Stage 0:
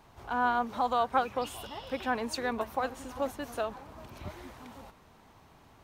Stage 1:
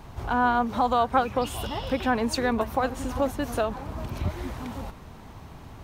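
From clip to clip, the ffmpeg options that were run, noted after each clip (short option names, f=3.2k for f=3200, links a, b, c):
-filter_complex "[0:a]lowshelf=f=220:g=10.5,asplit=2[a][b];[b]acompressor=threshold=-36dB:ratio=6,volume=2dB[c];[a][c]amix=inputs=2:normalize=0,volume=2dB"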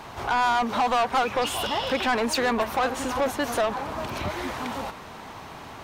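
-filter_complex "[0:a]asplit=2[a][b];[b]highpass=f=720:p=1,volume=24dB,asoftclip=type=tanh:threshold=-7.5dB[c];[a][c]amix=inputs=2:normalize=0,lowpass=f=5.7k:p=1,volume=-6dB,volume=-7dB"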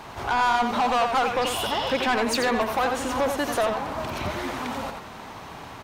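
-filter_complex "[0:a]asplit=2[a][b];[b]adelay=87.46,volume=-6dB,highshelf=f=4k:g=-1.97[c];[a][c]amix=inputs=2:normalize=0"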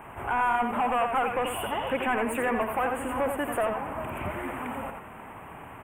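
-af "asuperstop=centerf=4900:order=8:qfactor=0.91,volume=-3.5dB"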